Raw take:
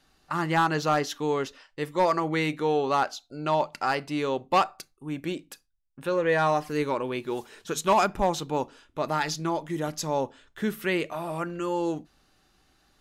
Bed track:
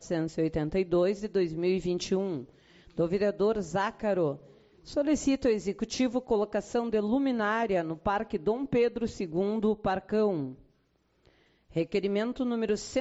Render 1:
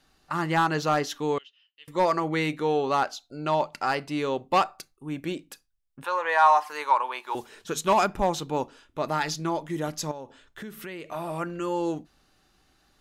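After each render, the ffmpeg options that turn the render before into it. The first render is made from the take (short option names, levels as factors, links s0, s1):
-filter_complex "[0:a]asettb=1/sr,asplit=3[s0][s1][s2];[s0]atrim=end=1.384[s3];[s1]atrim=start=1.38:end=1.88,asetpts=PTS-STARTPTS,afade=t=in:d=0.004:c=qsin,afade=t=out:st=0.496:d=0.004:c=qsin,bandpass=f=3000:t=q:w=11[s4];[s2]atrim=start=1.876[s5];[s3][s4]acrossfade=d=0.004:c1=hsin:c2=qsin[s6];[s6][s5]acrossfade=d=0.004:c1=qsin:c2=hsin,asettb=1/sr,asplit=3[s7][s8][s9];[s7]atrim=end=6.044[s10];[s8]atrim=start=6.04:end=7.35,asetpts=PTS-STARTPTS,afade=t=in:d=0.004:c=qsin,afade=t=out:st=1.306:d=0.004:c=qsin,highpass=f=920:t=q:w=3.9[s11];[s9]atrim=start=7.346[s12];[s10][s11]acrossfade=d=0.004:c1=hsin:c2=qsin[s13];[s13][s12]acrossfade=d=0.004:c1=qsin:c2=hsin,asettb=1/sr,asplit=3[s14][s15][s16];[s14]atrim=end=10.114[s17];[s15]atrim=start=10.11:end=11.11,asetpts=PTS-STARTPTS,afade=t=in:d=0.004:c=qsin,afade=t=out:st=0.996:d=0.004:c=qsin,acompressor=threshold=0.0158:ratio=5:attack=3.2:release=140:knee=1:detection=peak[s18];[s16]atrim=start=11.106[s19];[s17][s18]acrossfade=d=0.004:c1=hsin:c2=qsin[s20];[s20][s19]acrossfade=d=0.004:c1=qsin:c2=hsin"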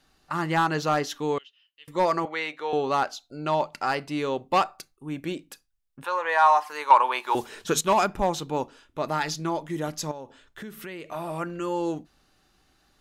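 -filter_complex "[0:a]asettb=1/sr,asplit=3[s0][s1][s2];[s0]atrim=end=2.254[s3];[s1]atrim=start=2.25:end=2.73,asetpts=PTS-STARTPTS,afade=t=in:d=0.004:c=qsin,afade=t=out:st=0.476:d=0.004:c=qsin,acrossover=split=470 5300:gain=0.0708 1 0.224[s4][s5][s6];[s4][s5][s6]amix=inputs=3:normalize=0[s7];[s2]atrim=start=2.726[s8];[s3][s7]acrossfade=d=0.004:c1=hsin:c2=qsin[s9];[s9][s8]acrossfade=d=0.004:c1=qsin:c2=hsin,asettb=1/sr,asplit=3[s10][s11][s12];[s10]atrim=end=6.904[s13];[s11]atrim=start=6.9:end=7.81,asetpts=PTS-STARTPTS,afade=t=in:d=0.004:c=qsin,afade=t=out:st=0.906:d=0.004:c=qsin,acontrast=64[s14];[s12]atrim=start=7.806[s15];[s13][s14]acrossfade=d=0.004:c1=hsin:c2=qsin[s16];[s16][s15]acrossfade=d=0.004:c1=qsin:c2=hsin"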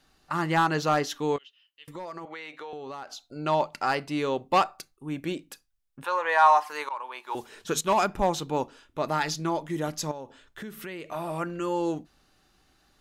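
-filter_complex "[0:a]asettb=1/sr,asplit=3[s0][s1][s2];[s0]atrim=end=1.364[s3];[s1]atrim=start=1.36:end=3.36,asetpts=PTS-STARTPTS,afade=t=in:d=0.004:c=qsin,afade=t=out:st=1.996:d=0.004:c=qsin,acompressor=threshold=0.0158:ratio=6:attack=3.2:release=140:knee=1:detection=peak[s4];[s2]atrim=start=3.356[s5];[s3][s4]acrossfade=d=0.004:c1=hsin:c2=qsin[s6];[s6][s5]acrossfade=d=0.004:c1=qsin:c2=hsin,asplit=2[s7][s8];[s7]atrim=end=6.89,asetpts=PTS-STARTPTS,afade=t=out:st=6.886:d=0.004:c=hsin:silence=0.0841395[s9];[s8]atrim=start=6.89,asetpts=PTS-STARTPTS,afade=t=in:d=1.37:silence=0.0841395[s10];[s9][s10]concat=n=2:v=0:a=1"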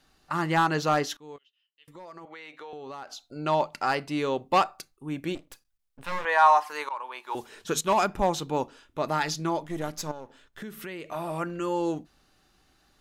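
-filter_complex "[0:a]asettb=1/sr,asplit=3[s0][s1][s2];[s0]atrim=end=5.354[s3];[s1]atrim=start=5.35:end=6.25,asetpts=PTS-STARTPTS,afade=t=in:d=0.004:c=qsin,afade=t=out:st=0.896:d=0.004:c=qsin,aeval=exprs='max(val(0),0)':c=same[s4];[s2]atrim=start=6.246[s5];[s3][s4]acrossfade=d=0.004:c1=hsin:c2=qsin[s6];[s6][s5]acrossfade=d=0.004:c1=qsin:c2=hsin,asettb=1/sr,asplit=3[s7][s8][s9];[s7]atrim=end=9.644[s10];[s8]atrim=start=9.64:end=10.62,asetpts=PTS-STARTPTS,afade=t=in:d=0.004:c=qsin,afade=t=out:st=0.976:d=0.004:c=qsin,aeval=exprs='if(lt(val(0),0),0.447*val(0),val(0))':c=same[s11];[s9]atrim=start=10.616[s12];[s10][s11]acrossfade=d=0.004:c1=hsin:c2=qsin[s13];[s13][s12]acrossfade=d=0.004:c1=qsin:c2=hsin,asplit=2[s14][s15];[s14]atrim=end=1.17,asetpts=PTS-STARTPTS,afade=t=out:st=1.166:d=0.004:c=hsin:silence=0.0794328[s16];[s15]atrim=start=1.17,asetpts=PTS-STARTPTS,afade=t=in:d=2.07:silence=0.0794328[s17];[s16][s17]concat=n=2:v=0:a=1"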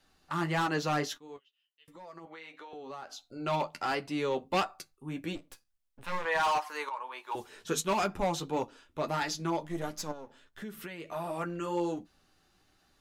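-filter_complex "[0:a]flanger=delay=9.5:depth=3.4:regen=-27:speed=1.5:shape=triangular,acrossover=split=530|1800[s0][s1][s2];[s1]asoftclip=type=hard:threshold=0.0299[s3];[s0][s3][s2]amix=inputs=3:normalize=0"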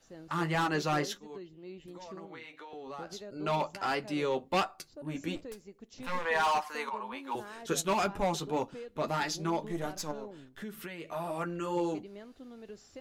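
-filter_complex "[1:a]volume=0.112[s0];[0:a][s0]amix=inputs=2:normalize=0"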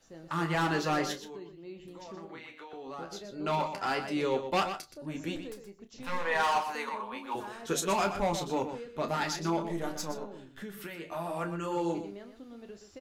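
-filter_complex "[0:a]asplit=2[s0][s1];[s1]adelay=30,volume=0.316[s2];[s0][s2]amix=inputs=2:normalize=0,asplit=2[s3][s4];[s4]adelay=122.4,volume=0.355,highshelf=f=4000:g=-2.76[s5];[s3][s5]amix=inputs=2:normalize=0"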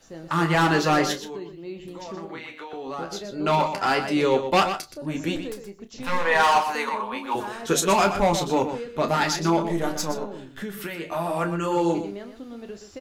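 -af "volume=2.82"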